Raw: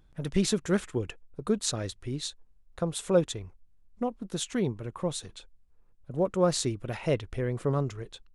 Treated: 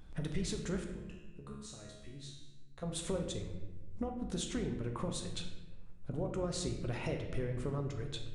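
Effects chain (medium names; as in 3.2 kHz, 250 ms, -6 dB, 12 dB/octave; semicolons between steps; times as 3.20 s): octave divider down 2 oct, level -6 dB; in parallel at +1 dB: peak limiter -21.5 dBFS, peak gain reduction 10.5 dB; on the sum: compression 6:1, threshold -36 dBFS, peak gain reduction 20 dB; 0.84–2.83 s: feedback comb 70 Hz, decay 0.78 s, harmonics all, mix 90%; on a send at -3 dB: reverberation RT60 1.1 s, pre-delay 4 ms; on the sum: resampled via 22.05 kHz; trim -1 dB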